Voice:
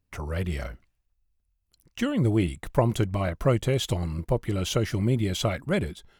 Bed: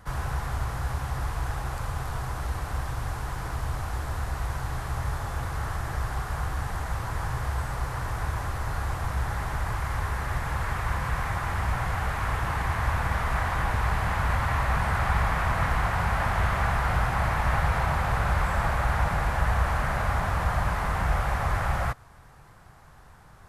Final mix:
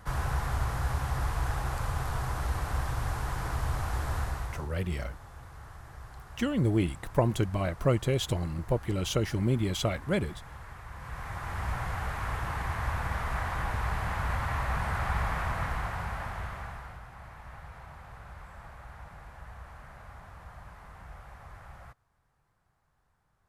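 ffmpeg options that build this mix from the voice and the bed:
ffmpeg -i stem1.wav -i stem2.wav -filter_complex "[0:a]adelay=4400,volume=-3dB[link_01];[1:a]volume=10.5dB,afade=type=out:start_time=4.18:duration=0.51:silence=0.158489,afade=type=in:start_time=10.92:duration=0.77:silence=0.281838,afade=type=out:start_time=15.35:duration=1.65:silence=0.149624[link_02];[link_01][link_02]amix=inputs=2:normalize=0" out.wav

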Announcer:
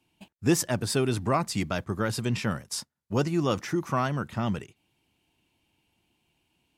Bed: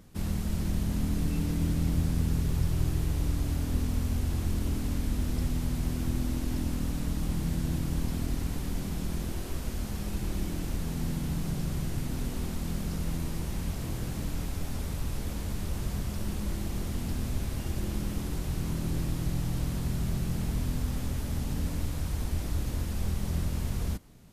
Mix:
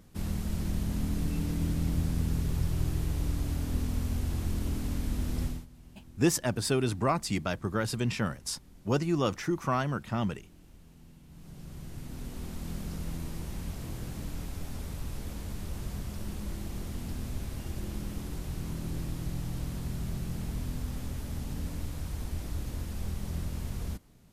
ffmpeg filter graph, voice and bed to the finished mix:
ffmpeg -i stem1.wav -i stem2.wav -filter_complex "[0:a]adelay=5750,volume=-2dB[link_01];[1:a]volume=16dB,afade=type=out:start_time=5.44:duration=0.22:silence=0.0944061,afade=type=in:start_time=11.27:duration=1.45:silence=0.125893[link_02];[link_01][link_02]amix=inputs=2:normalize=0" out.wav

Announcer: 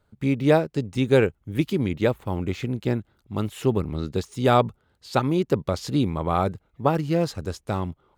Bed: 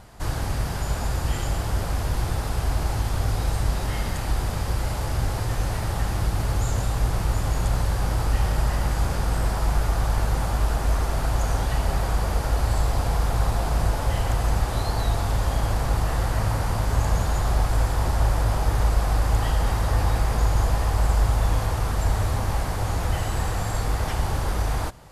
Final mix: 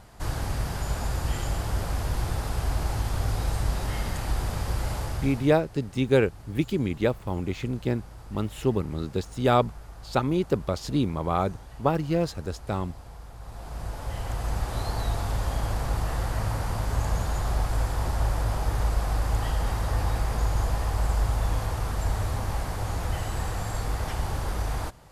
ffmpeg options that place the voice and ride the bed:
ffmpeg -i stem1.wav -i stem2.wav -filter_complex "[0:a]adelay=5000,volume=-2.5dB[link_01];[1:a]volume=13.5dB,afade=type=out:start_time=4.95:duration=0.65:silence=0.125893,afade=type=in:start_time=13.4:duration=1.45:silence=0.149624[link_02];[link_01][link_02]amix=inputs=2:normalize=0" out.wav

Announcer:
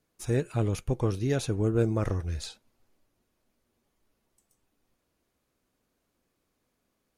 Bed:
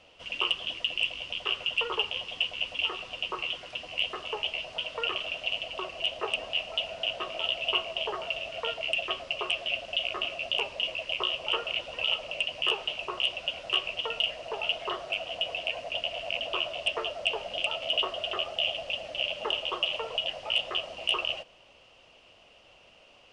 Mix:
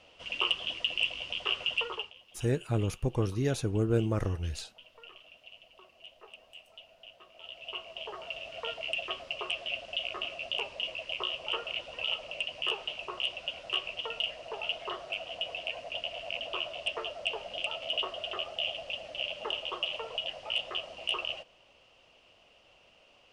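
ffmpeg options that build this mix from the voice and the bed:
ffmpeg -i stem1.wav -i stem2.wav -filter_complex "[0:a]adelay=2150,volume=-2dB[link_01];[1:a]volume=15.5dB,afade=type=out:start_time=1.71:duration=0.43:silence=0.1,afade=type=in:start_time=7.32:duration=1.39:silence=0.149624[link_02];[link_01][link_02]amix=inputs=2:normalize=0" out.wav

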